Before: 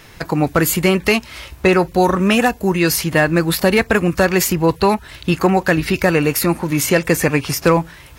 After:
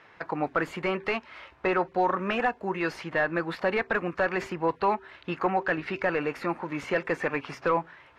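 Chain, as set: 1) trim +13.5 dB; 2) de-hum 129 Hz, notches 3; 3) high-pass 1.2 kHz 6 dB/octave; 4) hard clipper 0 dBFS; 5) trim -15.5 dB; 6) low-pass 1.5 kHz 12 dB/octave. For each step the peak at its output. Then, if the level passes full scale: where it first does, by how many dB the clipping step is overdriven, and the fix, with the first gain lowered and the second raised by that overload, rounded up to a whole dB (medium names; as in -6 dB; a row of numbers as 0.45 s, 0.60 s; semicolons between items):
+11.5 dBFS, +11.5 dBFS, +9.5 dBFS, 0.0 dBFS, -15.5 dBFS, -15.0 dBFS; step 1, 9.5 dB; step 1 +3.5 dB, step 5 -5.5 dB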